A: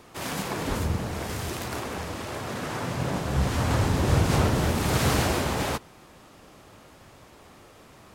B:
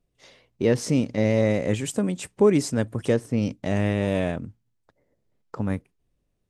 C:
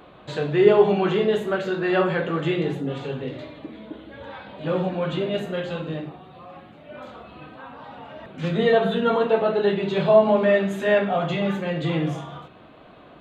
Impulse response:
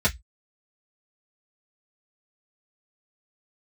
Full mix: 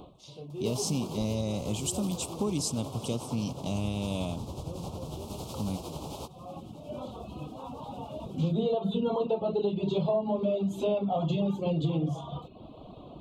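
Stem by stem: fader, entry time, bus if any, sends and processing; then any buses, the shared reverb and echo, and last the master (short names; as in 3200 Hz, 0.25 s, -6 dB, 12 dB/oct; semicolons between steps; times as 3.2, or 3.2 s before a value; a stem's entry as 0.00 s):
-3.5 dB, 0.50 s, no send, compressor 12:1, threshold -29 dBFS, peak gain reduction 13.5 dB; tremolo 11 Hz, depth 47%
+2.5 dB, 0.00 s, no send, HPF 130 Hz; bell 450 Hz -15 dB 2 oct
0.0 dB, 0.00 s, no send, reverb removal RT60 0.58 s; low shelf 230 Hz +11 dB; auto duck -21 dB, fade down 0.25 s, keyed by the second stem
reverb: off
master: Chebyshev band-stop 970–3200 Hz, order 2; compressor 8:1, threshold -25 dBFS, peak gain reduction 15.5 dB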